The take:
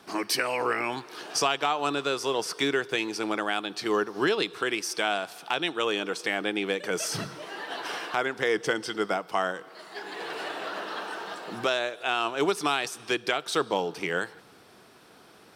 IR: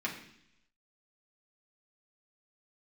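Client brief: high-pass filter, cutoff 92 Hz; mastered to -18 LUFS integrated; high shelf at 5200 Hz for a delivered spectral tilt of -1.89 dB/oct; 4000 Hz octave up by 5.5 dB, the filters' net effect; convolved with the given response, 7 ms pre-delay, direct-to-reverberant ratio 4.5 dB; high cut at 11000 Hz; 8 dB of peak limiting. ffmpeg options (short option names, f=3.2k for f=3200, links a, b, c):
-filter_complex "[0:a]highpass=92,lowpass=11k,equalizer=f=4k:t=o:g=4,highshelf=f=5.2k:g=7.5,alimiter=limit=-15.5dB:level=0:latency=1,asplit=2[a][b];[1:a]atrim=start_sample=2205,adelay=7[c];[b][c]afir=irnorm=-1:irlink=0,volume=-9.5dB[d];[a][d]amix=inputs=2:normalize=0,volume=9.5dB"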